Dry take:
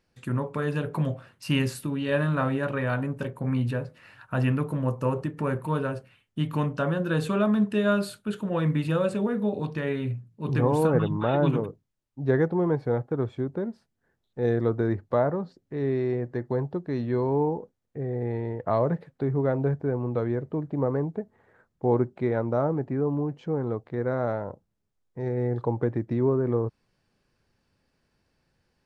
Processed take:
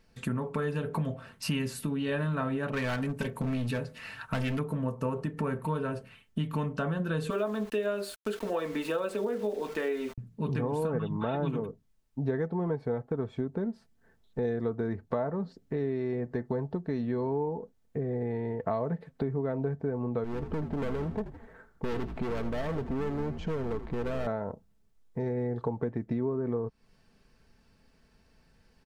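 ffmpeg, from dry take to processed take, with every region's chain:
ffmpeg -i in.wav -filter_complex "[0:a]asettb=1/sr,asplit=3[link_01][link_02][link_03];[link_01]atrim=end=2.704[link_04];[link_02]atrim=start=2.7:end=4.59,asetpts=PTS-STARTPTS,afade=type=in:duration=0.004:curve=qsin,afade=type=out:start_time=1.886:duration=0.004:curve=qsin,asoftclip=type=hard:threshold=-24.5dB,adynamicequalizer=threshold=0.00447:dfrequency=1900:dqfactor=0.7:tfrequency=1900:tqfactor=0.7:attack=5:release=100:ratio=0.375:range=3.5:mode=boostabove:tftype=highshelf[link_05];[link_03]atrim=start=4.586[link_06];[link_04][link_05]acrossfade=duration=0.004:curve1=hsin:curve2=qsin[link_07];[link_07][link_06]acrossfade=duration=0.004:curve1=qsin:curve2=hsin,asettb=1/sr,asplit=3[link_08][link_09][link_10];[link_08]atrim=end=7.304[link_11];[link_09]atrim=start=7.3:end=10.18,asetpts=PTS-STARTPTS,afade=type=in:duration=0.004:curve=qsin,afade=type=out:start_time=2.876:duration=0.004:curve=qsin,highpass=frequency=330:width=0.5412,highpass=frequency=330:width=1.3066,lowshelf=frequency=500:gain=5.5,aeval=exprs='val(0)*gte(abs(val(0)),0.00708)':channel_layout=same[link_12];[link_10]atrim=start=10.176[link_13];[link_11][link_12]acrossfade=duration=0.004:curve1=hsin:curve2=qsin[link_14];[link_14][link_13]acrossfade=duration=0.004:curve1=qsin:curve2=hsin,asettb=1/sr,asplit=3[link_15][link_16][link_17];[link_15]atrim=end=20.244[link_18];[link_16]atrim=start=20.24:end=24.27,asetpts=PTS-STARTPTS,afade=type=in:duration=0.004:curve=qsin,afade=type=out:start_time=4.026:duration=0.004:curve=qsin,volume=30.5dB,asoftclip=hard,volume=-30.5dB,asplit=5[link_19][link_20][link_21][link_22][link_23];[link_20]adelay=81,afreqshift=-65,volume=-12dB[link_24];[link_21]adelay=162,afreqshift=-130,volume=-19.7dB[link_25];[link_22]adelay=243,afreqshift=-195,volume=-27.5dB[link_26];[link_23]adelay=324,afreqshift=-260,volume=-35.2dB[link_27];[link_19][link_24][link_25][link_26][link_27]amix=inputs=5:normalize=0,atrim=end_sample=177723[link_28];[link_17]atrim=start=24.266[link_29];[link_18][link_28]acrossfade=duration=0.004:curve1=hsin:curve2=qsin[link_30];[link_30][link_29]acrossfade=duration=0.004:curve1=qsin:curve2=hsin,lowshelf=frequency=89:gain=7.5,aecho=1:1:4.5:0.43,acompressor=threshold=-35dB:ratio=4,volume=5dB" out.wav

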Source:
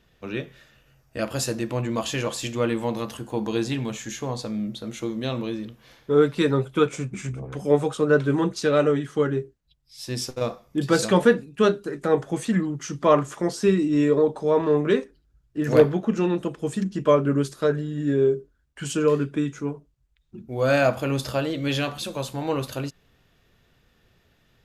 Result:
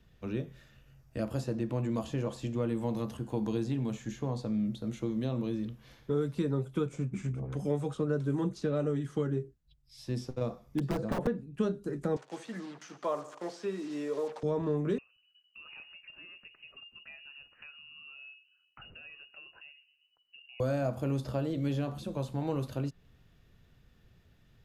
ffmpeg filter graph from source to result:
ffmpeg -i in.wav -filter_complex "[0:a]asettb=1/sr,asplit=3[link_01][link_02][link_03];[link_01]atrim=end=10.664[link_04];[link_02]atrim=start=10.66:end=11.27,asetpts=PTS-STARTPTS,afade=type=in:duration=0.004:curve=qsin,afade=type=out:start_time=0.606:duration=0.004:curve=qsin,acrossover=split=2700[link_05][link_06];[link_06]acompressor=threshold=-40dB:ratio=4:attack=1:release=60[link_07];[link_05][link_07]amix=inputs=2:normalize=0,asubboost=boost=4.5:cutoff=83,aeval=exprs='(mod(5.31*val(0)+1,2)-1)/5.31':channel_layout=same[link_08];[link_03]atrim=start=11.266[link_09];[link_04][link_08]acrossfade=duration=0.004:curve1=hsin:curve2=qsin[link_10];[link_10][link_09]acrossfade=duration=0.004:curve1=qsin:curve2=hsin,asettb=1/sr,asplit=3[link_11][link_12][link_13];[link_11]atrim=end=12.164[link_14];[link_12]atrim=start=12.16:end=14.43,asetpts=PTS-STARTPTS,afade=type=in:duration=0.004:curve=qsin,afade=type=out:start_time=2.266:duration=0.004:curve=qsin,acrusher=bits=5:mix=0:aa=0.5,highpass=620,lowpass=6400,aecho=1:1:73|146|219|292:0.141|0.0678|0.0325|0.0156,atrim=end_sample=100107[link_15];[link_13]atrim=start=14.426[link_16];[link_14][link_15]acrossfade=duration=0.004:curve1=hsin:curve2=qsin[link_17];[link_17][link_16]acrossfade=duration=0.004:curve1=qsin:curve2=hsin,asettb=1/sr,asplit=3[link_18][link_19][link_20];[link_18]atrim=end=14.984[link_21];[link_19]atrim=start=14.98:end=20.6,asetpts=PTS-STARTPTS,afade=type=in:duration=0.004:curve=qsin,afade=type=out:start_time=5.616:duration=0.004:curve=qsin,acompressor=threshold=-41dB:ratio=2:attack=3.2:release=140:knee=1:detection=peak,asplit=2[link_22][link_23];[link_23]adelay=123,lowpass=frequency=1000:poles=1,volume=-22.5dB,asplit=2[link_24][link_25];[link_25]adelay=123,lowpass=frequency=1000:poles=1,volume=0.51,asplit=2[link_26][link_27];[link_27]adelay=123,lowpass=frequency=1000:poles=1,volume=0.51[link_28];[link_22][link_24][link_26][link_28]amix=inputs=4:normalize=0,atrim=end_sample=247842,lowpass=frequency=2600:width_type=q:width=0.5098,lowpass=frequency=2600:width_type=q:width=0.6013,lowpass=frequency=2600:width_type=q:width=0.9,lowpass=frequency=2600:width_type=q:width=2.563,afreqshift=-3000[link_29];[link_20]atrim=start=20.596[link_30];[link_21][link_29]acrossfade=duration=0.004:curve1=hsin:curve2=qsin[link_31];[link_31][link_30]acrossfade=duration=0.004:curve1=qsin:curve2=hsin,bass=frequency=250:gain=9,treble=frequency=4000:gain=0,acrossover=split=170|1100|5100[link_32][link_33][link_34][link_35];[link_32]acompressor=threshold=-32dB:ratio=4[link_36];[link_33]acompressor=threshold=-23dB:ratio=4[link_37];[link_34]acompressor=threshold=-47dB:ratio=4[link_38];[link_35]acompressor=threshold=-53dB:ratio=4[link_39];[link_36][link_37][link_38][link_39]amix=inputs=4:normalize=0,volume=-6.5dB" out.wav

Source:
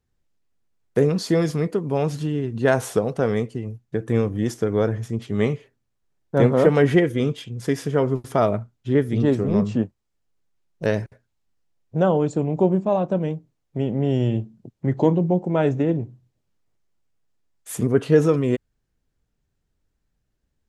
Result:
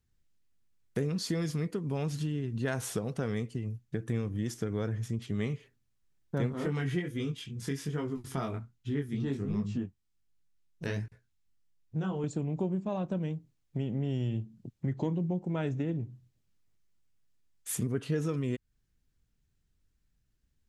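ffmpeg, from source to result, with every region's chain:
ffmpeg -i in.wav -filter_complex "[0:a]asettb=1/sr,asplit=3[link_01][link_02][link_03];[link_01]atrim=end=6.524[link_04];[link_02]atrim=start=6.52:end=12.24,asetpts=PTS-STARTPTS,afade=type=in:duration=0.004:curve=qsin,afade=type=out:start_time=5.716:duration=0.004:curve=qsin,equalizer=frequency=570:width=7.2:gain=-11.5,flanger=delay=18.5:depth=4.2:speed=1.3[link_05];[link_03]atrim=start=12.236[link_06];[link_04][link_05]acrossfade=duration=0.004:curve1=hsin:curve2=qsin[link_07];[link_07][link_06]acrossfade=duration=0.004:curve1=qsin:curve2=hsin,equalizer=frequency=620:width_type=o:width=2.1:gain=-9.5,acompressor=threshold=-32dB:ratio=2.5" out.wav

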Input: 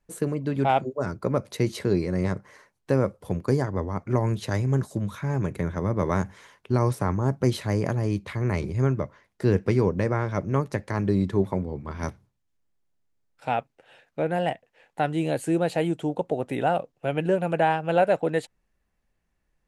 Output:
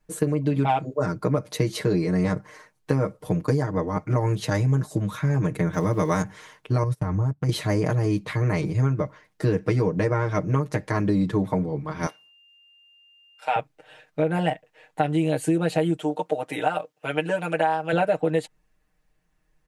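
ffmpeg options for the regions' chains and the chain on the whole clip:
ffmpeg -i in.wav -filter_complex "[0:a]asettb=1/sr,asplit=3[link_01][link_02][link_03];[link_01]atrim=end=5.734[link_04];[link_02]atrim=start=5.73:end=6.22,asetpts=PTS-STARTPTS,afade=type=in:duration=0.004:curve=qsin,afade=type=out:start_time=0.486:duration=0.004:curve=qsin,highshelf=frequency=3800:gain=11,aeval=exprs='val(0)*gte(abs(val(0)),0.00398)':channel_layout=same[link_05];[link_03]atrim=start=6.216[link_06];[link_04][link_05]acrossfade=duration=0.004:curve1=hsin:curve2=qsin[link_07];[link_07][link_06]acrossfade=duration=0.004:curve1=qsin:curve2=hsin,asettb=1/sr,asplit=3[link_08][link_09][link_10];[link_08]atrim=end=6.834[link_11];[link_09]atrim=start=6.83:end=7.49,asetpts=PTS-STARTPTS,afade=type=in:duration=0.004:curve=qsin,afade=type=out:start_time=0.656:duration=0.004:curve=qsin,acompressor=threshold=-29dB:ratio=12:attack=3.2:release=140:knee=1:detection=peak,agate=range=-27dB:threshold=-37dB:ratio=16:release=100:detection=peak,equalizer=frequency=78:width_type=o:width=1.6:gain=14.5[link_12];[link_10]atrim=start=7.486[link_13];[link_11][link_12]acrossfade=duration=0.004:curve1=hsin:curve2=qsin[link_14];[link_14][link_13]acrossfade=duration=0.004:curve1=qsin:curve2=hsin,asettb=1/sr,asplit=3[link_15][link_16][link_17];[link_15]atrim=end=12.064[link_18];[link_16]atrim=start=12.06:end=13.56,asetpts=PTS-STARTPTS,afade=type=in:duration=0.004:curve=qsin,afade=type=out:start_time=1.496:duration=0.004:curve=qsin,highpass=630,aeval=exprs='val(0)+0.000891*sin(2*PI*2800*n/s)':channel_layout=same[link_19];[link_17]atrim=start=13.556[link_20];[link_18][link_19]acrossfade=duration=0.004:curve1=hsin:curve2=qsin[link_21];[link_21][link_20]acrossfade=duration=0.004:curve1=qsin:curve2=hsin,asettb=1/sr,asplit=3[link_22][link_23][link_24];[link_22]atrim=end=15.974[link_25];[link_23]atrim=start=15.97:end=17.93,asetpts=PTS-STARTPTS,afade=type=in:duration=0.004:curve=qsin,afade=type=out:start_time=1.956:duration=0.004:curve=qsin,highpass=frequency=700:poles=1,aecho=1:1:6.5:0.3,atrim=end_sample=86436[link_26];[link_24]atrim=start=17.926[link_27];[link_25][link_26]acrossfade=duration=0.004:curve1=hsin:curve2=qsin[link_28];[link_28][link_27]acrossfade=duration=0.004:curve1=qsin:curve2=hsin,aecho=1:1:6.5:0.99,acompressor=threshold=-20dB:ratio=6,volume=2dB" out.wav

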